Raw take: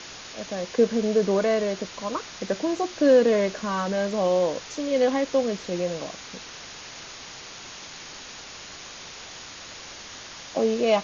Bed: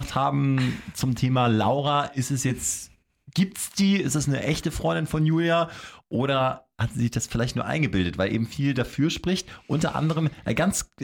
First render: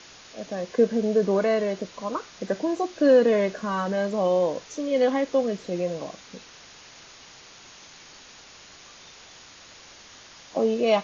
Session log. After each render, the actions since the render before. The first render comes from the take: noise print and reduce 7 dB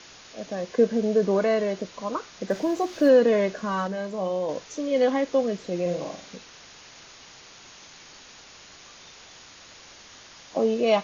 2.50–3.09 s: companding laws mixed up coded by mu; 3.87–4.49 s: feedback comb 63 Hz, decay 0.31 s; 5.81–6.36 s: flutter echo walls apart 7.8 m, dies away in 0.45 s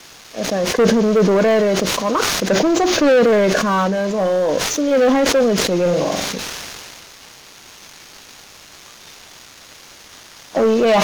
waveshaping leveller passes 3; decay stretcher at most 22 dB/s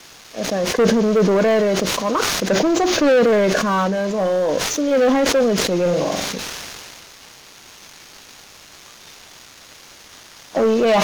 trim -1.5 dB

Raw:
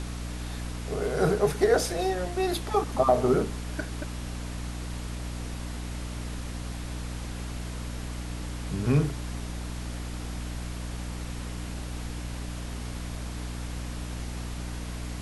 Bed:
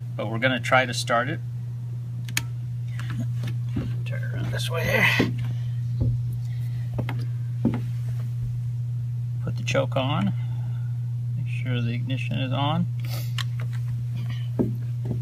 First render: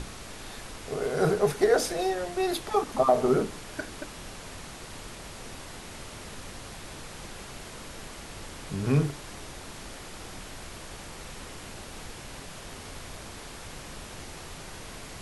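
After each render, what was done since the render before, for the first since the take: hum notches 60/120/180/240/300 Hz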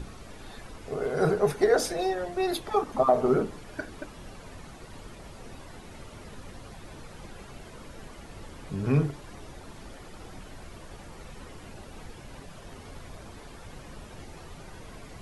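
noise reduction 10 dB, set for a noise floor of -43 dBFS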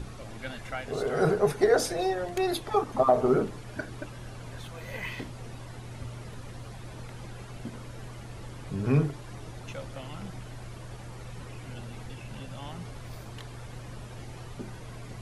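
add bed -17.5 dB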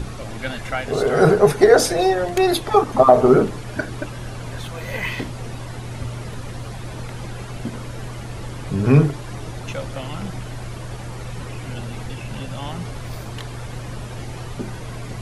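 trim +10.5 dB; peak limiter -1 dBFS, peak gain reduction 1 dB

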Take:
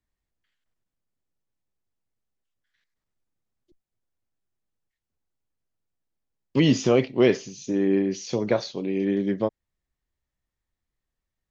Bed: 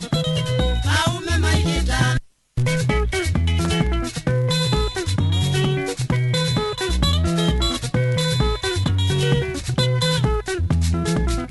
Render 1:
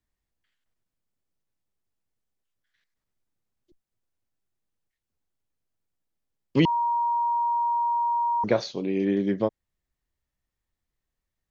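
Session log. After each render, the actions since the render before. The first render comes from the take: 6.65–8.44 s: bleep 945 Hz -21.5 dBFS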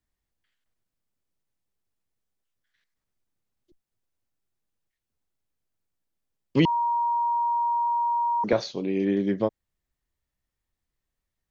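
7.87–8.53 s: high-pass 140 Hz 24 dB/octave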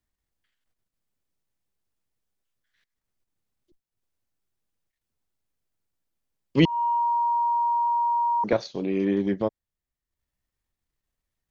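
in parallel at -2.5 dB: level held to a coarse grid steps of 19 dB; on the sum: transient shaper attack -4 dB, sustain -8 dB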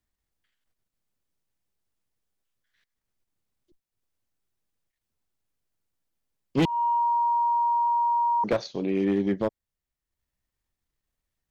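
hard clipper -17.5 dBFS, distortion -14 dB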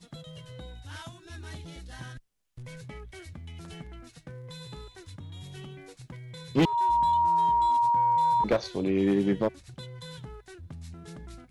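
add bed -23.5 dB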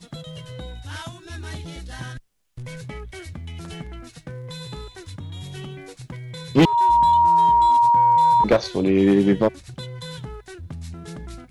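trim +8 dB

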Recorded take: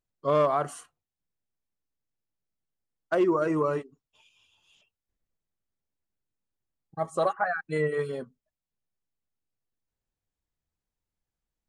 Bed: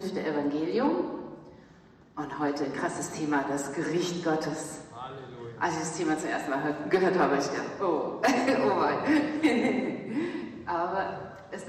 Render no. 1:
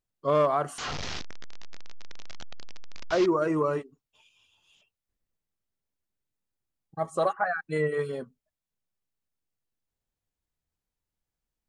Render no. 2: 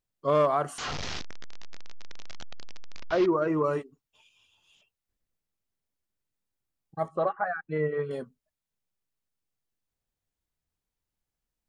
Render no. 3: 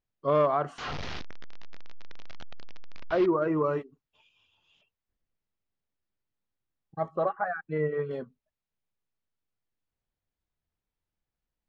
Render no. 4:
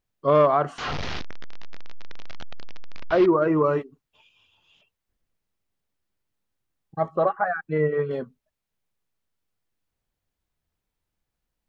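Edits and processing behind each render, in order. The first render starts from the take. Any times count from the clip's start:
0.78–3.26 s: one-bit delta coder 32 kbps, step -26.5 dBFS
3.00–3.64 s: distance through air 150 m; 7.08–8.11 s: distance through air 460 m
distance through air 170 m
trim +6 dB

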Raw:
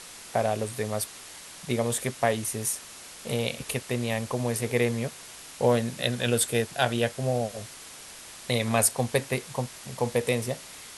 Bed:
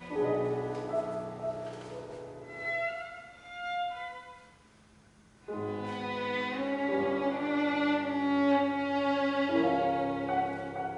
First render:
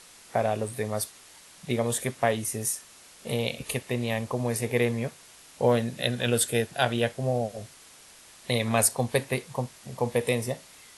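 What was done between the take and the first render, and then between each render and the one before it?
noise print and reduce 7 dB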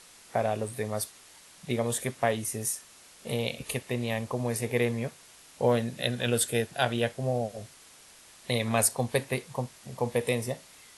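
trim -2 dB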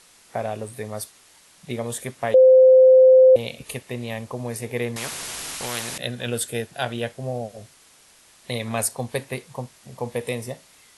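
2.34–3.36 s: bleep 518 Hz -8 dBFS; 4.96–5.98 s: spectrum-flattening compressor 4:1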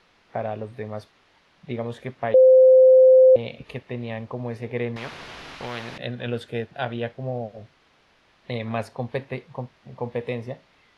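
distance through air 280 m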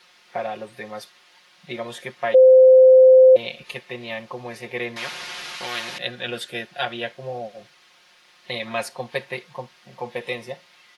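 tilt EQ +3.5 dB/octave; comb 5.6 ms, depth 97%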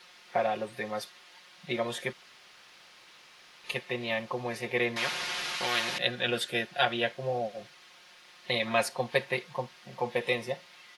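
2.13–3.64 s: room tone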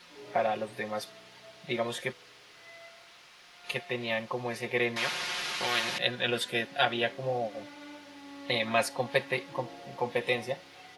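add bed -19 dB

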